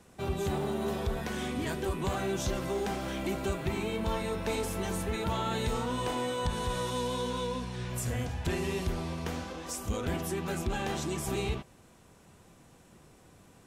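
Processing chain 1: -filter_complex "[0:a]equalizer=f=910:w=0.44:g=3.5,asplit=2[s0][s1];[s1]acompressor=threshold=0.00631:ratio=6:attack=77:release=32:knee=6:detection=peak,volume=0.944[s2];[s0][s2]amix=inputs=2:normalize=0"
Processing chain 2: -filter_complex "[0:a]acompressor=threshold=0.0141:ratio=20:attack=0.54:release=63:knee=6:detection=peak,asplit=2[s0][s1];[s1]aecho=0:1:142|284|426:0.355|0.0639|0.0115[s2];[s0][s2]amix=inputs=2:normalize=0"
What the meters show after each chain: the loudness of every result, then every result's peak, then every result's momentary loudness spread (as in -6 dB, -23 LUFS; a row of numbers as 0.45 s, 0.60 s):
-28.5 LUFS, -42.5 LUFS; -15.5 dBFS, -31.5 dBFS; 3 LU, 15 LU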